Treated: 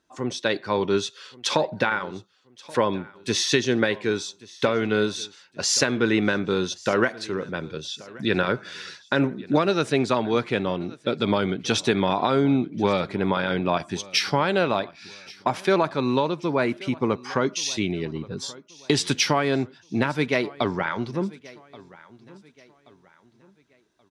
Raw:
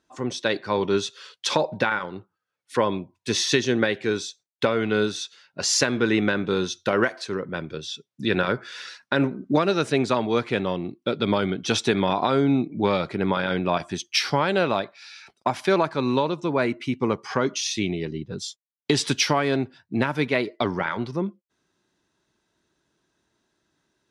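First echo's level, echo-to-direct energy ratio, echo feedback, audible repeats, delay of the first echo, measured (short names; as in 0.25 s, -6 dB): -21.5 dB, -21.0 dB, 37%, 2, 1.129 s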